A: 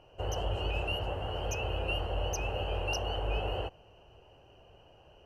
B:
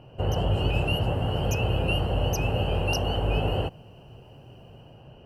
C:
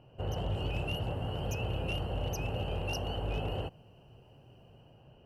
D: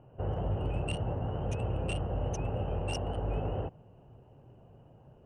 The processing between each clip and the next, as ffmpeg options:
ffmpeg -i in.wav -filter_complex "[0:a]equalizer=frequency=125:width_type=o:width=0.33:gain=8,equalizer=frequency=250:width_type=o:width=0.33:gain=5,equalizer=frequency=6300:width_type=o:width=0.33:gain=-9,acrossover=split=5000[link_01][link_02];[link_02]dynaudnorm=framelen=110:gausssize=9:maxgain=8.5dB[link_03];[link_01][link_03]amix=inputs=2:normalize=0,equalizer=frequency=170:width=0.95:gain=11.5,volume=4.5dB" out.wav
ffmpeg -i in.wav -af "asoftclip=type=hard:threshold=-18dB,volume=-9dB" out.wav
ffmpeg -i in.wav -filter_complex "[0:a]acrossover=split=2100[link_01][link_02];[link_02]acrusher=bits=5:mix=0:aa=0.5[link_03];[link_01][link_03]amix=inputs=2:normalize=0,aresample=22050,aresample=44100,volume=2dB" -ar 48000 -c:a libopus -b:a 48k out.opus

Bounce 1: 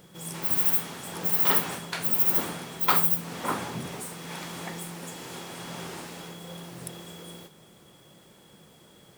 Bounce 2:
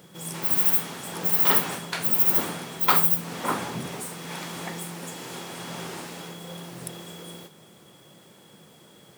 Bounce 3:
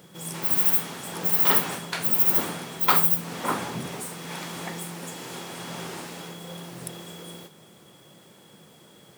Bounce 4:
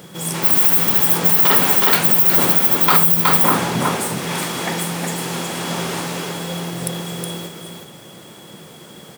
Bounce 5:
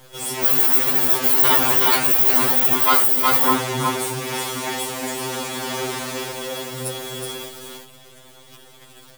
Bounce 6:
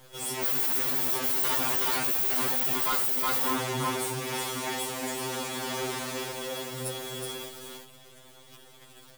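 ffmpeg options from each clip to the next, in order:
ffmpeg -i in.wav -af "highpass=100,volume=2.5dB" out.wav
ffmpeg -i in.wav -af anull out.wav
ffmpeg -i in.wav -filter_complex "[0:a]asplit=2[link_01][link_02];[link_02]aecho=0:1:368:0.562[link_03];[link_01][link_03]amix=inputs=2:normalize=0,alimiter=level_in=12dB:limit=-1dB:release=50:level=0:latency=1,volume=-1dB" out.wav
ffmpeg -i in.wav -af "acrusher=bits=6:dc=4:mix=0:aa=0.000001,lowshelf=frequency=90:gain=-9,afftfilt=real='re*2.45*eq(mod(b,6),0)':imag='im*2.45*eq(mod(b,6),0)':win_size=2048:overlap=0.75" out.wav
ffmpeg -i in.wav -af "asoftclip=type=hard:threshold=-18.5dB,volume=-6dB" out.wav

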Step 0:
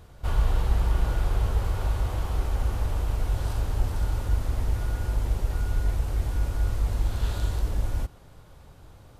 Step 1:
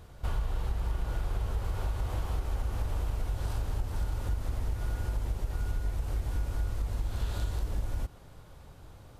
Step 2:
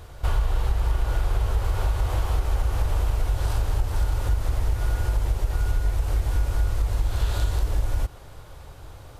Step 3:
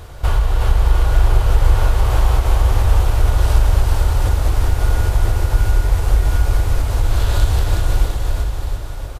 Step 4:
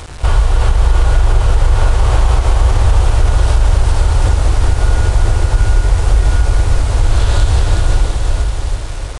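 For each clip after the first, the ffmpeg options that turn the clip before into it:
ffmpeg -i in.wav -af "acompressor=threshold=-26dB:ratio=6,volume=-1dB" out.wav
ffmpeg -i in.wav -af "equalizer=frequency=200:width_type=o:width=0.9:gain=-10,volume=9dB" out.wav
ffmpeg -i in.wav -af "aecho=1:1:370|703|1003|1272|1515:0.631|0.398|0.251|0.158|0.1,volume=7dB" out.wav
ffmpeg -i in.wav -af "acrusher=bits=5:mix=0:aa=0.000001,aresample=22050,aresample=44100,alimiter=level_in=5.5dB:limit=-1dB:release=50:level=0:latency=1,volume=-1dB" out.wav

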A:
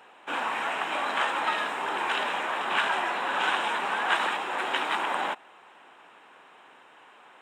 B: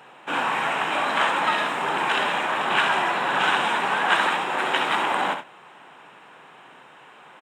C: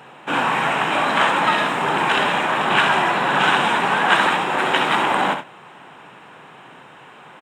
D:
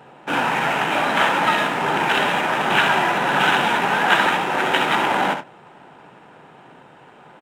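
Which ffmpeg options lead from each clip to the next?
ffmpeg -i in.wav -filter_complex "[0:a]equalizer=frequency=140:width=1.6:gain=11.5,asplit=2[link_01][link_02];[link_02]aecho=0:1:66|93:0.398|0.15[link_03];[link_01][link_03]amix=inputs=2:normalize=0,volume=4.5dB" out.wav
ffmpeg -i in.wav -af "lowshelf=frequency=190:gain=11.5,volume=4dB" out.wav
ffmpeg -i in.wav -filter_complex "[0:a]bandreject=frequency=1100:width=8.9,asplit=2[link_01][link_02];[link_02]adynamicsmooth=sensitivity=7:basefreq=710,volume=1dB[link_03];[link_01][link_03]amix=inputs=2:normalize=0,volume=-6.5dB" out.wav

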